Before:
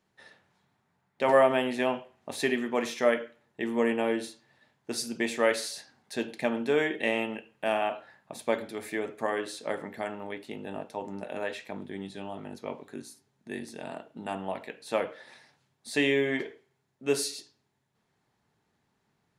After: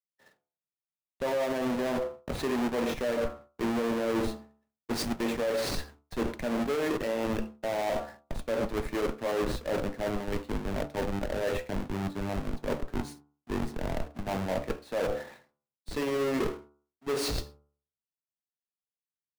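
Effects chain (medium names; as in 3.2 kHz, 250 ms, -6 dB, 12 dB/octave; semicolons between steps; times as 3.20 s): square wave that keeps the level; dynamic bell 540 Hz, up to +6 dB, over -38 dBFS, Q 3.9; in parallel at -6 dB: Schmitt trigger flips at -32.5 dBFS; on the sum: expander -44 dBFS; de-hum 72.73 Hz, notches 20; peak limiter -17 dBFS, peak gain reduction 12.5 dB; reverse; compression 6:1, threshold -33 dBFS, peak gain reduction 12.5 dB; reverse; treble shelf 3.1 kHz -9.5 dB; three bands expanded up and down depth 40%; trim +5.5 dB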